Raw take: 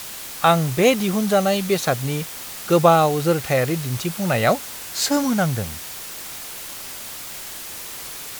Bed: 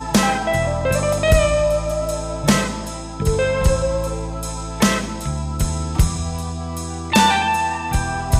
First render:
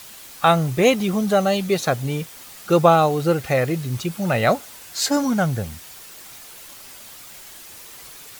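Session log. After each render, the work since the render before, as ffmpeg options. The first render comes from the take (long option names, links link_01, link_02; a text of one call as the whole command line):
ffmpeg -i in.wav -af "afftdn=noise_reduction=8:noise_floor=-34" out.wav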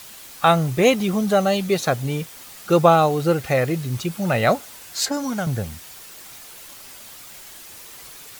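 ffmpeg -i in.wav -filter_complex "[0:a]asettb=1/sr,asplit=3[link_01][link_02][link_03];[link_01]atrim=end=5.054[link_04];[link_02]atrim=start=5.05:end=5.47,asetpts=PTS-STARTPTS,afade=type=in:duration=0.004:curve=qsin,afade=type=out:start_time=0.416:duration=0.004:curve=qsin,acrossover=split=420|2400[link_05][link_06][link_07];[link_05]acompressor=threshold=-27dB:ratio=4[link_08];[link_06]acompressor=threshold=-27dB:ratio=4[link_09];[link_07]acompressor=threshold=-32dB:ratio=4[link_10];[link_08][link_09][link_10]amix=inputs=3:normalize=0[link_11];[link_03]atrim=start=5.466[link_12];[link_04][link_11]acrossfade=duration=0.004:curve1=hsin:curve2=qsin[link_13];[link_13][link_12]acrossfade=duration=0.004:curve1=qsin:curve2=hsin" out.wav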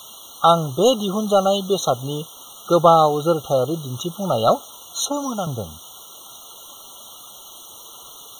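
ffmpeg -i in.wav -filter_complex "[0:a]asplit=2[link_01][link_02];[link_02]highpass=frequency=720:poles=1,volume=10dB,asoftclip=type=tanh:threshold=-1.5dB[link_03];[link_01][link_03]amix=inputs=2:normalize=0,lowpass=frequency=7900:poles=1,volume=-6dB,afftfilt=real='re*eq(mod(floor(b*sr/1024/1400),2),0)':imag='im*eq(mod(floor(b*sr/1024/1400),2),0)':win_size=1024:overlap=0.75" out.wav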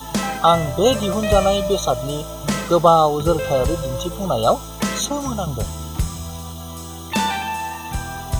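ffmpeg -i in.wav -i bed.wav -filter_complex "[1:a]volume=-6.5dB[link_01];[0:a][link_01]amix=inputs=2:normalize=0" out.wav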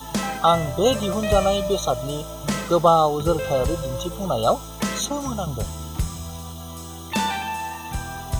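ffmpeg -i in.wav -af "volume=-3dB" out.wav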